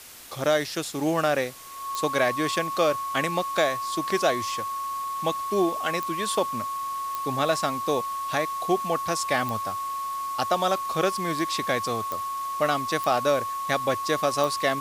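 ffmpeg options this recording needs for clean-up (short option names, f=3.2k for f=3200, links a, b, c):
-af "adeclick=t=4,bandreject=f=1.1k:w=30,afwtdn=0.0063"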